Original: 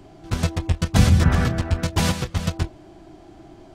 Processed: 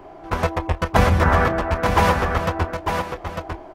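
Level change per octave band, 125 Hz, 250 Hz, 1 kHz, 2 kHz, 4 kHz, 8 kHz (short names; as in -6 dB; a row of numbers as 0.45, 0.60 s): -2.5, -1.0, +12.0, +7.0, -2.0, -6.0 dB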